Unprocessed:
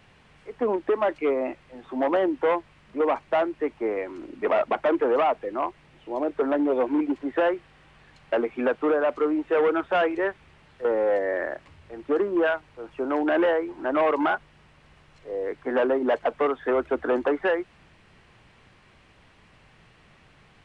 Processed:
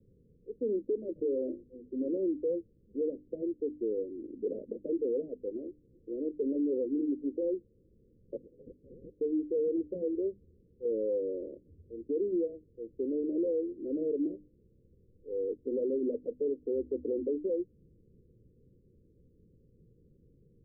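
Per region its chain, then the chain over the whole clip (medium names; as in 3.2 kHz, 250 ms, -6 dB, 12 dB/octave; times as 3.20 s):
1.15–1.63 s: peaking EQ 600 Hz +10.5 dB 0.38 oct + hum notches 50/100/150/200/250/300/350/400 Hz + three bands compressed up and down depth 100%
8.36–9.21 s: comb filter that takes the minimum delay 0.77 ms + frequency inversion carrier 3 kHz
whole clip: steep low-pass 510 Hz 96 dB/octave; hum notches 50/100/150/200/250/300 Hz; peak limiter -21.5 dBFS; trim -3 dB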